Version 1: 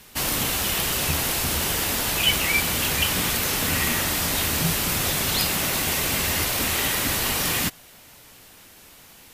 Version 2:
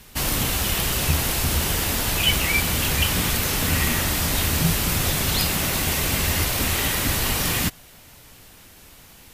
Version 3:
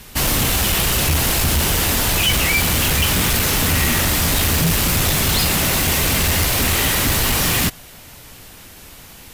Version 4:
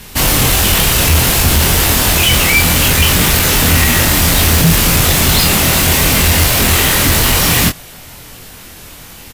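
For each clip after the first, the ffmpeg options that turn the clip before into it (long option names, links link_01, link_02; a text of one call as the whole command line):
ffmpeg -i in.wav -af "lowshelf=frequency=130:gain=10" out.wav
ffmpeg -i in.wav -af "asoftclip=type=hard:threshold=-20.5dB,volume=7dB" out.wav
ffmpeg -i in.wav -filter_complex "[0:a]asplit=2[link_01][link_02];[link_02]adelay=24,volume=-4.5dB[link_03];[link_01][link_03]amix=inputs=2:normalize=0,volume=5dB" out.wav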